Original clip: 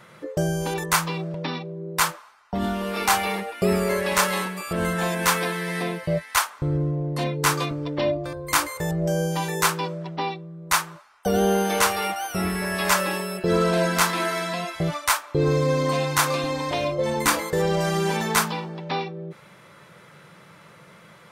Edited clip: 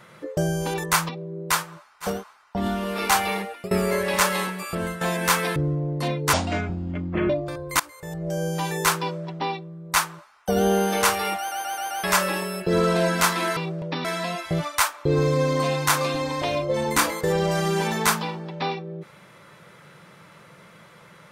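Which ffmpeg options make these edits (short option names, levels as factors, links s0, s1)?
-filter_complex "[0:a]asplit=17[s0][s1][s2][s3][s4][s5][s6][s7][s8][s9][s10][s11][s12][s13][s14][s15][s16];[s0]atrim=end=1.092[s17];[s1]atrim=start=1.568:end=2.22[s18];[s2]atrim=start=10.69:end=11.43[s19];[s3]atrim=start=1.98:end=3.69,asetpts=PTS-STARTPTS,afade=t=out:st=1.32:d=0.39:c=qsin:silence=0.0794328[s20];[s4]atrim=start=3.69:end=4.99,asetpts=PTS-STARTPTS,afade=t=in:d=0.004:c=hsin:silence=0.0794328,afade=t=out:st=0.99:d=0.31:silence=0.266073[s21];[s5]atrim=start=4.99:end=5.542,asetpts=PTS-STARTPTS,afade=t=in:d=0.004:c=hsin:silence=0.266073[s22];[s6]atrim=start=6.718:end=7.494[s23];[s7]atrim=start=7.49:end=8.07,asetpts=PTS-STARTPTS,asetrate=26460,aresample=44100[s24];[s8]atrim=start=8.066:end=8.57,asetpts=PTS-STARTPTS,afade=t=out:st=0.5:d=0.004:c=hsin:silence=0.0944061[s25];[s9]atrim=start=8.57:end=12.292,asetpts=PTS-STARTPTS,afade=t=in:d=0.9:silence=0.0944061[s26];[s10]atrim=start=12.158:end=12.292[s27];[s11]atrim=start=12.158:end=12.292[s28];[s12]atrim=start=12.158:end=12.292[s29];[s13]atrim=start=12.158:end=12.292[s30];[s14]atrim=start=12.808:end=14.342[s31];[s15]atrim=start=1.088:end=1.572[s32];[s16]atrim=start=14.338[s33];[s17][s18]acrossfade=d=0.004:c1=hsin:c2=hsin[s34];[s34][s19]acrossfade=d=0.24:c1=tri:c2=tri[s35];[s20][s21][s22]concat=n=3:v=0:a=1[s36];[s35][s36]acrossfade=d=0.24:c1=tri:c2=tri[s37];[s37][s23]acrossfade=d=0.004:c1=hsin:c2=hsin[s38];[s38][s24]acrossfade=d=0.004:c1=hsin:c2=hsin[s39];[s25][s26]concat=n=2:v=0:a=1[s40];[s39][s40]acrossfade=d=0.004:c1=hsin:c2=hsin[s41];[s41][s27]acrossfade=d=0.004:c1=hsin:c2=hsin[s42];[s42][s28]acrossfade=d=0.004:c1=hsin:c2=hsin[s43];[s43][s29]acrossfade=d=0.004:c1=hsin:c2=hsin[s44];[s44][s30]acrossfade=d=0.004:c1=hsin:c2=hsin[s45];[s45][s31]acrossfade=d=0.004:c1=hsin:c2=hsin[s46];[s46][s32]acrossfade=d=0.004:c1=hsin:c2=hsin[s47];[s47][s33]acrossfade=d=0.004:c1=hsin:c2=hsin"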